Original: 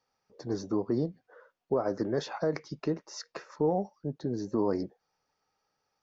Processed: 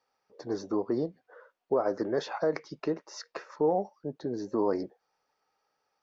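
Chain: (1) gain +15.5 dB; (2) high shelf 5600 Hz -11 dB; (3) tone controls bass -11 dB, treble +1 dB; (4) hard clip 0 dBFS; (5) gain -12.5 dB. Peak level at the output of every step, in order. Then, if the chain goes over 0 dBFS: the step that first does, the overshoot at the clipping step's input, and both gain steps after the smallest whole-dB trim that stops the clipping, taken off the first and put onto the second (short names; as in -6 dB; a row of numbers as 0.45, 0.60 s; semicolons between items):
-2.5, -2.5, -3.5, -3.5, -16.0 dBFS; no overload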